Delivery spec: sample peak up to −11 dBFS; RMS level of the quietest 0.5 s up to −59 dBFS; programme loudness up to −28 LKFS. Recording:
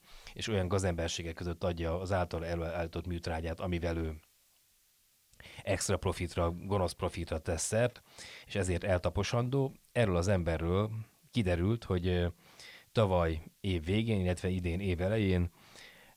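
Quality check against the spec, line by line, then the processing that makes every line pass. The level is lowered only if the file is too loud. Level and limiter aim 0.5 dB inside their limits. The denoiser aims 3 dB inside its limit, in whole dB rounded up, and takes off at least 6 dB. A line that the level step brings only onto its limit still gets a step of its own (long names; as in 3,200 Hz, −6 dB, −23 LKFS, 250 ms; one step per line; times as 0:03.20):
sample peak −16.0 dBFS: in spec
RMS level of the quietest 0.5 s −70 dBFS: in spec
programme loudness −33.5 LKFS: in spec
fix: no processing needed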